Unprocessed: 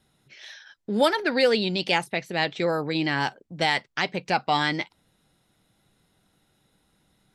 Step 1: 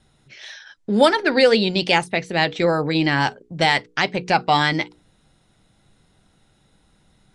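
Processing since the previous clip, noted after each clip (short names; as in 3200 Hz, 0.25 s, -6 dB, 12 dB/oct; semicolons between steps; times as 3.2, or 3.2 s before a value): Chebyshev low-pass 10000 Hz, order 5; low shelf 80 Hz +9.5 dB; notches 60/120/180/240/300/360/420/480 Hz; gain +6 dB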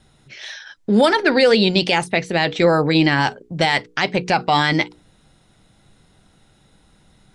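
maximiser +8.5 dB; gain -4 dB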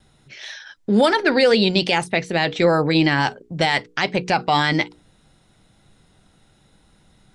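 vibrato 0.77 Hz 10 cents; gain -1.5 dB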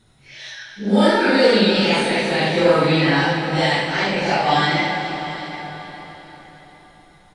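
phase scrambler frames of 0.2 s; echo 0.749 s -16.5 dB; plate-style reverb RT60 4.8 s, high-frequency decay 0.85×, DRR 3 dB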